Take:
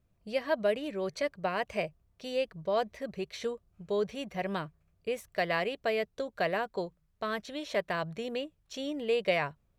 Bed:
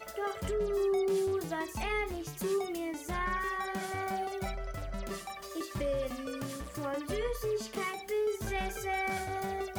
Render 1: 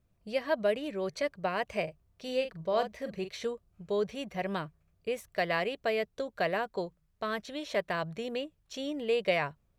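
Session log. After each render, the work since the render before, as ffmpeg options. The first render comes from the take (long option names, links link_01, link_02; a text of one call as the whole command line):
ffmpeg -i in.wav -filter_complex "[0:a]asettb=1/sr,asplit=3[link_01][link_02][link_03];[link_01]atrim=end=1.834[link_04];[link_02]atrim=start=1.83:end=3.34,asetpts=PTS-STARTPTS,afade=type=in:duration=0.004:curve=qsin,afade=type=out:start_time=1.506:duration=0.004:curve=qsin,asplit=2[link_05][link_06];[link_06]adelay=43,volume=-9dB[link_07];[link_05][link_07]amix=inputs=2:normalize=0,atrim=end_sample=66591[link_08];[link_03]atrim=start=3.336[link_09];[link_04][link_08]acrossfade=duration=0.004:curve1=hsin:curve2=qsin[link_10];[link_10][link_09]acrossfade=duration=0.004:curve1=qsin:curve2=hsin" out.wav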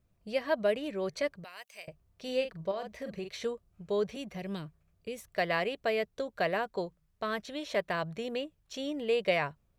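ffmpeg -i in.wav -filter_complex "[0:a]asettb=1/sr,asplit=3[link_01][link_02][link_03];[link_01]atrim=end=1.444[link_04];[link_02]atrim=start=1.44:end=1.88,asetpts=PTS-STARTPTS,afade=type=in:duration=0.004:curve=qsin,afade=type=out:start_time=0.436:duration=0.004:curve=qsin,aderivative[link_05];[link_03]atrim=start=1.876[link_06];[link_04][link_05]acrossfade=duration=0.004:curve1=hsin:curve2=qsin[link_07];[link_07][link_06]acrossfade=duration=0.004:curve1=qsin:curve2=hsin,asettb=1/sr,asplit=3[link_08][link_09][link_10];[link_08]atrim=end=2.714[link_11];[link_09]atrim=start=2.71:end=3.35,asetpts=PTS-STARTPTS,afade=type=in:duration=0.004:curve=qsin,afade=type=out:start_time=0.636:duration=0.004:curve=qsin,acompressor=threshold=-33dB:ratio=6:attack=3.2:release=140:knee=1:detection=peak[link_12];[link_10]atrim=start=3.346[link_13];[link_11][link_12]acrossfade=duration=0.004:curve1=hsin:curve2=qsin[link_14];[link_14][link_13]acrossfade=duration=0.004:curve1=qsin:curve2=hsin,asettb=1/sr,asplit=3[link_15][link_16][link_17];[link_15]atrim=end=4.164[link_18];[link_16]atrim=start=4.16:end=5.24,asetpts=PTS-STARTPTS,afade=type=in:duration=0.004:curve=qsin,afade=type=out:start_time=1.076:duration=0.004:curve=qsin,acrossover=split=370|3000[link_19][link_20][link_21];[link_20]acompressor=threshold=-45dB:ratio=6:attack=3.2:release=140:knee=2.83:detection=peak[link_22];[link_19][link_22][link_21]amix=inputs=3:normalize=0[link_23];[link_17]atrim=start=5.236[link_24];[link_18][link_23]acrossfade=duration=0.004:curve1=hsin:curve2=qsin[link_25];[link_25][link_24]acrossfade=duration=0.004:curve1=qsin:curve2=hsin" out.wav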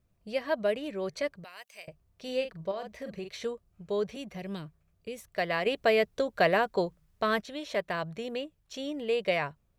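ffmpeg -i in.wav -filter_complex "[0:a]asettb=1/sr,asplit=3[link_01][link_02][link_03];[link_01]atrim=end=5.664[link_04];[link_02]atrim=start=5.66:end=7.41,asetpts=PTS-STARTPTS,afade=type=in:duration=0.004:curve=qsin,afade=type=out:start_time=1.746:duration=0.004:curve=qsin,acontrast=57[link_05];[link_03]atrim=start=7.406[link_06];[link_04][link_05]acrossfade=duration=0.004:curve1=hsin:curve2=qsin[link_07];[link_07][link_06]acrossfade=duration=0.004:curve1=qsin:curve2=hsin" out.wav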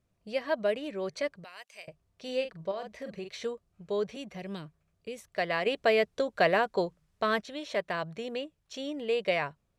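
ffmpeg -i in.wav -af "lowpass=10000,lowshelf=frequency=100:gain=-8" out.wav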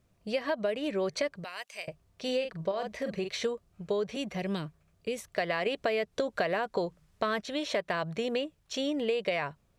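ffmpeg -i in.wav -filter_complex "[0:a]asplit=2[link_01][link_02];[link_02]alimiter=limit=-23dB:level=0:latency=1,volume=1.5dB[link_03];[link_01][link_03]amix=inputs=2:normalize=0,acompressor=threshold=-26dB:ratio=10" out.wav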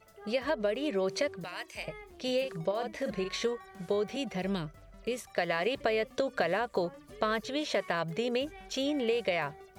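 ffmpeg -i in.wav -i bed.wav -filter_complex "[1:a]volume=-15.5dB[link_01];[0:a][link_01]amix=inputs=2:normalize=0" out.wav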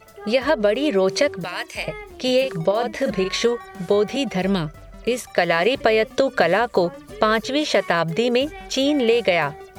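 ffmpeg -i in.wav -af "volume=12dB" out.wav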